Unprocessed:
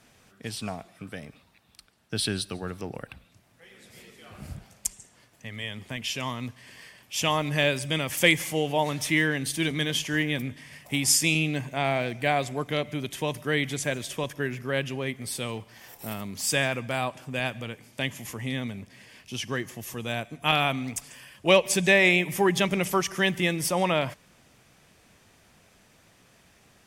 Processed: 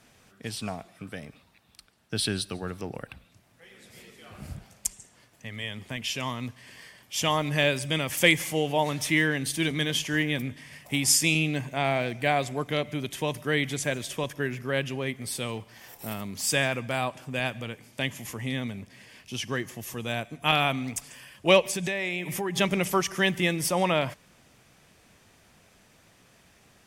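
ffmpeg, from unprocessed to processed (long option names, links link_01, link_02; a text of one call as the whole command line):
ffmpeg -i in.wav -filter_complex "[0:a]asettb=1/sr,asplit=3[link_01][link_02][link_03];[link_01]atrim=end=6.814[link_04];[link_02]atrim=start=6.81:end=7.44,asetpts=PTS-STARTPTS,afade=type=in:duration=0.004:curve=qsin,afade=type=out:start_time=0.626:duration=0.004:curve=qsin,bandreject=frequency=2600:width=12[link_05];[link_03]atrim=start=7.436[link_06];[link_04][link_05]acrossfade=duration=0.004:curve1=hsin:curve2=qsin[link_07];[link_07][link_06]acrossfade=duration=0.004:curve1=qsin:curve2=hsin,asettb=1/sr,asplit=3[link_08][link_09][link_10];[link_08]atrim=end=21.654[link_11];[link_09]atrim=start=21.65:end=22.58,asetpts=PTS-STARTPTS,afade=type=in:duration=0.004:curve=qsin,afade=type=out:start_time=0.926:duration=0.004:curve=qsin,acompressor=threshold=-27dB:ratio=4:attack=3.2:release=140:knee=1:detection=peak[link_12];[link_10]atrim=start=22.576[link_13];[link_11][link_12]acrossfade=duration=0.004:curve1=hsin:curve2=qsin[link_14];[link_14][link_13]acrossfade=duration=0.004:curve1=qsin:curve2=hsin" out.wav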